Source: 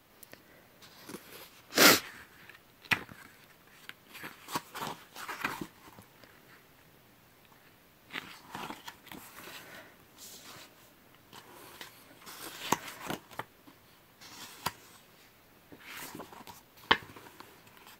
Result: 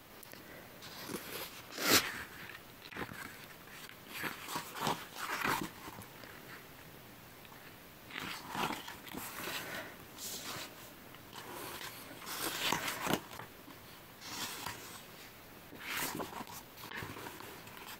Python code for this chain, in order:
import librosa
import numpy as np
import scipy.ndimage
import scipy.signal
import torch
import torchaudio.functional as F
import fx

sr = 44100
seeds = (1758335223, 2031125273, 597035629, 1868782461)

y = fx.attack_slew(x, sr, db_per_s=110.0)
y = y * librosa.db_to_amplitude(6.5)